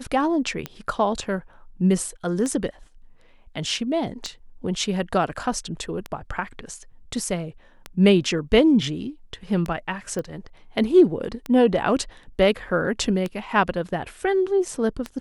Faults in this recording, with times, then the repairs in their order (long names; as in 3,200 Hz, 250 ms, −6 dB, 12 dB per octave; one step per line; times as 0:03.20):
scratch tick 33 1/3 rpm −14 dBFS
0:10.19: click −18 dBFS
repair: click removal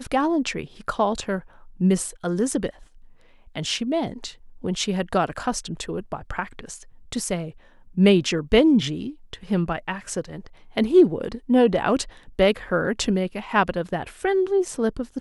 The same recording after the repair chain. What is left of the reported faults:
none of them is left